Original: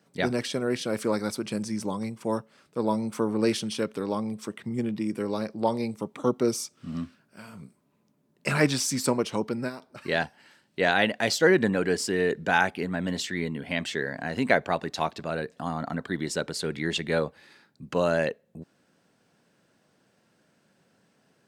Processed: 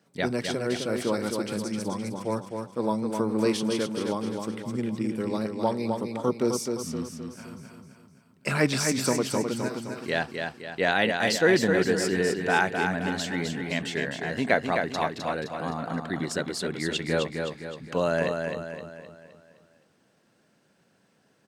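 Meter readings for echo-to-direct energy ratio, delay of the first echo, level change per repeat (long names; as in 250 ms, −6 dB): −4.0 dB, 259 ms, −6.5 dB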